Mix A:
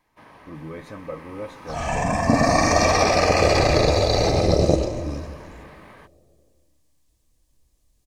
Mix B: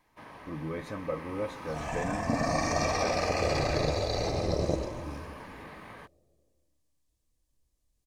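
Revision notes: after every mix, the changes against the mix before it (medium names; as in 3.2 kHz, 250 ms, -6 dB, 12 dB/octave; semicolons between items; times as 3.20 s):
second sound -11.0 dB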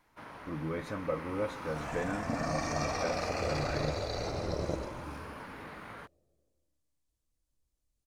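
second sound -5.5 dB; master: remove Butterworth band-stop 1.4 kHz, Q 7.5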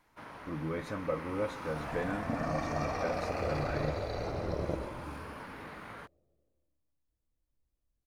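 second sound: add peaking EQ 7.3 kHz -11 dB 2.2 oct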